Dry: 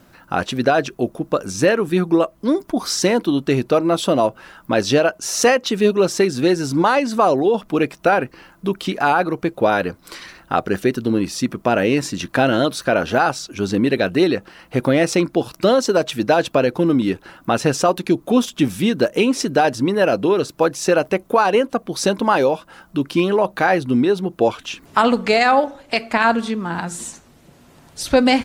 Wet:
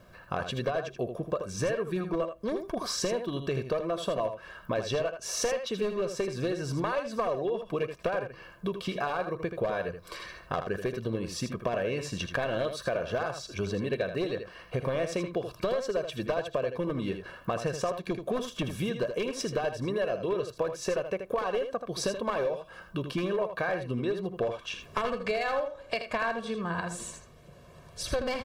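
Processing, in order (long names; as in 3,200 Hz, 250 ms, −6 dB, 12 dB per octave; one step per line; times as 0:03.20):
wavefolder on the positive side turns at −10.5 dBFS
high-shelf EQ 4,400 Hz −9 dB
notch filter 2,000 Hz, Q 17
comb filter 1.8 ms, depth 67%
downward compressor 4 to 1, threshold −24 dBFS, peak gain reduction 13.5 dB
single-tap delay 80 ms −8.5 dB
on a send at −23.5 dB: convolution reverb RT60 0.40 s, pre-delay 49 ms
on the sum: level −5 dB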